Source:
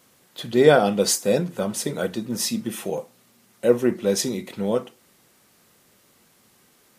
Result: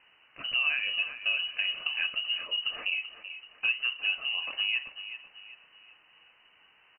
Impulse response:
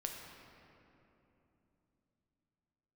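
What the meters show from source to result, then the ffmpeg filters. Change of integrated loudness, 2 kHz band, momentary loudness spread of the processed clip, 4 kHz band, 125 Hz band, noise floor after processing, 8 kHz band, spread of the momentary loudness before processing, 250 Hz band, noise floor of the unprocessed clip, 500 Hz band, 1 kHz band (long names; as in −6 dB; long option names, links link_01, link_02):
−6.5 dB, +4.0 dB, 14 LU, +4.0 dB, below −35 dB, −63 dBFS, below −40 dB, 13 LU, below −35 dB, −59 dBFS, −35.0 dB, −18.0 dB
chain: -filter_complex "[0:a]acompressor=threshold=-27dB:ratio=5,asplit=2[link_01][link_02];[link_02]aecho=0:1:383|766|1149|1532:0.251|0.1|0.0402|0.0161[link_03];[link_01][link_03]amix=inputs=2:normalize=0,lowpass=frequency=2600:width_type=q:width=0.5098,lowpass=frequency=2600:width_type=q:width=0.6013,lowpass=frequency=2600:width_type=q:width=0.9,lowpass=frequency=2600:width_type=q:width=2.563,afreqshift=-3100"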